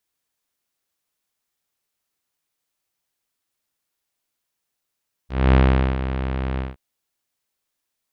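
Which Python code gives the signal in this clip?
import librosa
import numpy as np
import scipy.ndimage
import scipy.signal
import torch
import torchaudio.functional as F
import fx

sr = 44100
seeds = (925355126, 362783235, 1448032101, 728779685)

y = fx.sub_voice(sr, note=36, wave='saw', cutoff_hz=3200.0, q=0.7, env_oct=1.0, env_s=0.05, attack_ms=240.0, decay_s=0.44, sustain_db=-11.5, release_s=0.17, note_s=1.3, slope=24)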